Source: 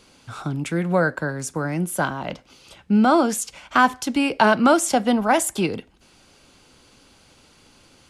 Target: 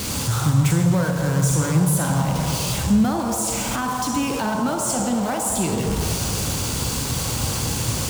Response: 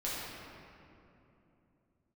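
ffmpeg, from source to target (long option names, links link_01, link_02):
-filter_complex "[0:a]aeval=exprs='val(0)+0.5*0.112*sgn(val(0))':channel_layout=same,asplit=2[link_01][link_02];[link_02]equalizer=frequency=125:width_type=o:width=1:gain=11,equalizer=frequency=250:width_type=o:width=1:gain=-9,equalizer=frequency=500:width_type=o:width=1:gain=6,equalizer=frequency=1000:width_type=o:width=1:gain=10,equalizer=frequency=2000:width_type=o:width=1:gain=-6,equalizer=frequency=8000:width_type=o:width=1:gain=11[link_03];[1:a]atrim=start_sample=2205,asetrate=66150,aresample=44100,adelay=44[link_04];[link_03][link_04]afir=irnorm=-1:irlink=0,volume=-7dB[link_05];[link_01][link_05]amix=inputs=2:normalize=0,alimiter=limit=-9dB:level=0:latency=1:release=285,highpass=50,bass=frequency=250:gain=12,treble=frequency=4000:gain=6,volume=-7.5dB"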